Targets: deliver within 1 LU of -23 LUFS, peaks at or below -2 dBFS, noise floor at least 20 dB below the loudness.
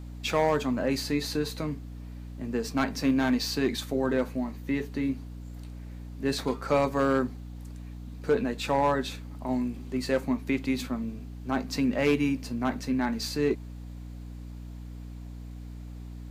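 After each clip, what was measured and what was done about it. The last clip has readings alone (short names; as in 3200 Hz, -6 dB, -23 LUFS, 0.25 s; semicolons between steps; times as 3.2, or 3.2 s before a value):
clipped 0.4%; flat tops at -16.5 dBFS; hum 60 Hz; harmonics up to 300 Hz; hum level -38 dBFS; loudness -29.0 LUFS; peak -16.5 dBFS; loudness target -23.0 LUFS
-> clip repair -16.5 dBFS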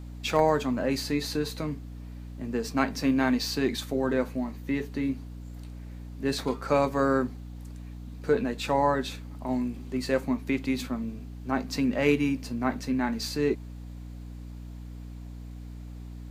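clipped 0.0%; hum 60 Hz; harmonics up to 180 Hz; hum level -38 dBFS
-> de-hum 60 Hz, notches 3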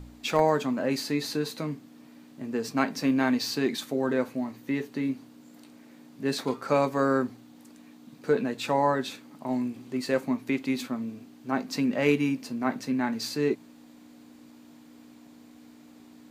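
hum none; loudness -28.5 LUFS; peak -9.0 dBFS; loudness target -23.0 LUFS
-> gain +5.5 dB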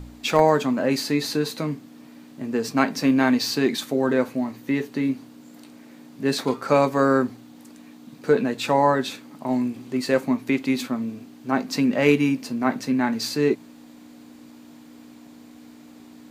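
loudness -23.0 LUFS; peak -3.5 dBFS; noise floor -47 dBFS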